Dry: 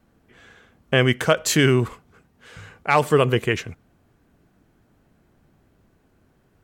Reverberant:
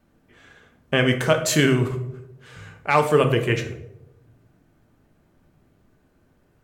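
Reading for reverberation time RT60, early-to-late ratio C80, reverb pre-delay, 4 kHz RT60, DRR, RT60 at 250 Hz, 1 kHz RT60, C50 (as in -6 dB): 0.90 s, 13.0 dB, 3 ms, 0.45 s, 5.0 dB, 0.95 s, 0.70 s, 10.0 dB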